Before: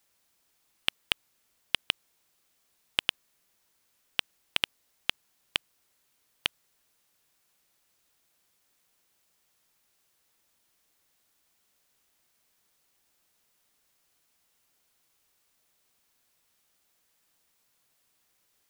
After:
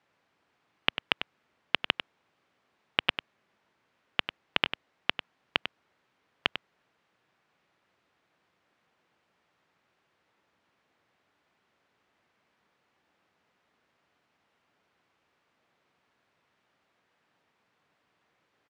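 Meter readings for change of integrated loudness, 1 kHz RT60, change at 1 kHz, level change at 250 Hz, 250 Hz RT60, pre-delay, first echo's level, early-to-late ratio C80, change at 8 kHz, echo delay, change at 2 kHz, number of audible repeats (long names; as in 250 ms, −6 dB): +1.0 dB, no reverb audible, +7.0 dB, +7.5 dB, no reverb audible, no reverb audible, −10.0 dB, no reverb audible, below −15 dB, 97 ms, +3.5 dB, 1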